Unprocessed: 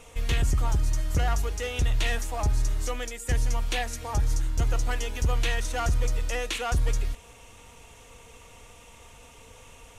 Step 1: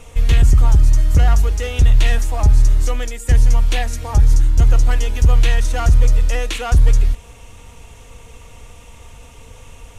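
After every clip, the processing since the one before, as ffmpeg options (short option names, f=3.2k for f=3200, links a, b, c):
-af "lowshelf=f=170:g=9.5,volume=5dB"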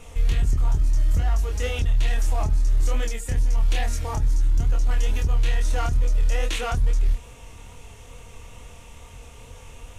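-af "alimiter=limit=-13.5dB:level=0:latency=1:release=16,flanger=delay=22.5:depth=5.9:speed=2.3"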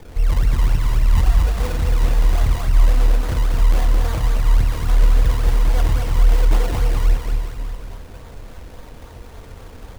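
-filter_complex "[0:a]acrossover=split=210|3000[a][b][c];[b]acompressor=threshold=-35dB:ratio=2.5[d];[a][d][c]amix=inputs=3:normalize=0,acrusher=samples=31:mix=1:aa=0.000001:lfo=1:lforange=31:lforate=3.6,aecho=1:1:220|418|596.2|756.6|900.9:0.631|0.398|0.251|0.158|0.1,volume=3.5dB"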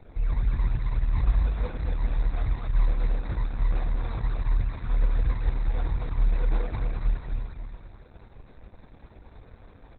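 -filter_complex "[0:a]asuperstop=centerf=3000:order=8:qfactor=4.4,asplit=2[a][b];[b]adelay=18,volume=-10.5dB[c];[a][c]amix=inputs=2:normalize=0,volume=-8dB" -ar 48000 -c:a libopus -b:a 8k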